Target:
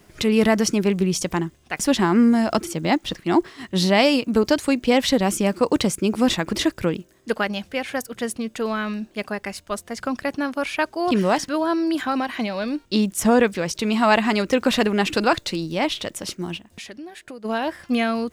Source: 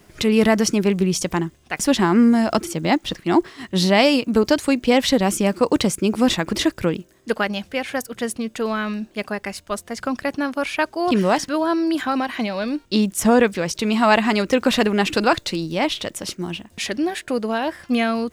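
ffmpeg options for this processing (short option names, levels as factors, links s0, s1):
-filter_complex "[0:a]asplit=3[s0][s1][s2];[s0]afade=t=out:st=16.57:d=0.02[s3];[s1]acompressor=threshold=0.0158:ratio=4,afade=t=in:st=16.57:d=0.02,afade=t=out:st=17.44:d=0.02[s4];[s2]afade=t=in:st=17.44:d=0.02[s5];[s3][s4][s5]amix=inputs=3:normalize=0,volume=0.841"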